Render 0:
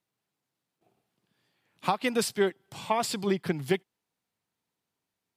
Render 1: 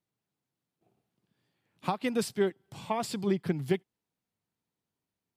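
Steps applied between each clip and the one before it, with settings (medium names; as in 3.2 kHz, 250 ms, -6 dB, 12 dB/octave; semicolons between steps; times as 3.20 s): bass shelf 420 Hz +8.5 dB; trim -6.5 dB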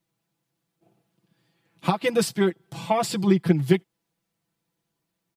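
comb 6 ms, depth 85%; trim +6 dB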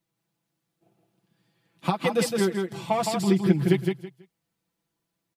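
feedback delay 164 ms, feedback 21%, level -4.5 dB; trim -2.5 dB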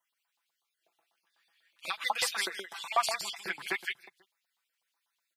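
random holes in the spectrogram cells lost 21%; LFO high-pass saw up 8.1 Hz 820–3900 Hz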